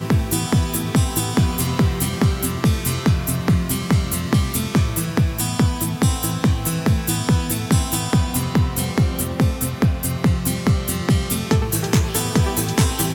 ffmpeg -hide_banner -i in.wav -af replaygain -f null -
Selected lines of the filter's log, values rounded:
track_gain = +1.4 dB
track_peak = 0.478